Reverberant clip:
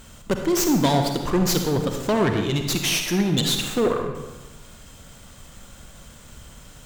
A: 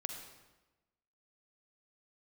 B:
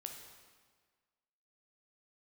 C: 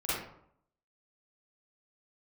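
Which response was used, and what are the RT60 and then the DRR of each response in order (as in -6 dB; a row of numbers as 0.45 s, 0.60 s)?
A; 1.1 s, 1.6 s, 0.70 s; 4.5 dB, 3.0 dB, -12.0 dB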